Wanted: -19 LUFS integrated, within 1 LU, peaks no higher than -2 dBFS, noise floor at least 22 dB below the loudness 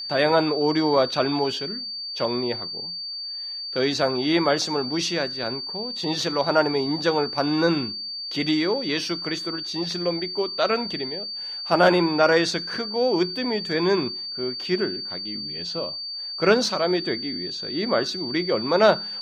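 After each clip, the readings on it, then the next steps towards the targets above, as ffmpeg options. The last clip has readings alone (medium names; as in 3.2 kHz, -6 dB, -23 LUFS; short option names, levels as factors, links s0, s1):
steady tone 4.6 kHz; tone level -30 dBFS; loudness -23.5 LUFS; peak level -4.5 dBFS; loudness target -19.0 LUFS
-> -af "bandreject=f=4600:w=30"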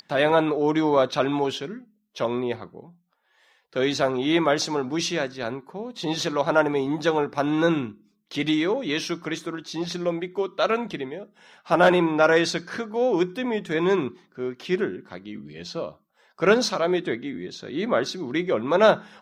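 steady tone not found; loudness -24.0 LUFS; peak level -4.5 dBFS; loudness target -19.0 LUFS
-> -af "volume=1.78,alimiter=limit=0.794:level=0:latency=1"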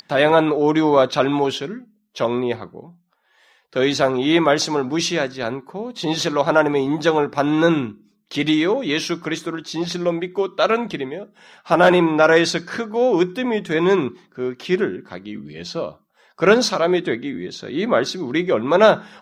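loudness -19.0 LUFS; peak level -2.0 dBFS; noise floor -62 dBFS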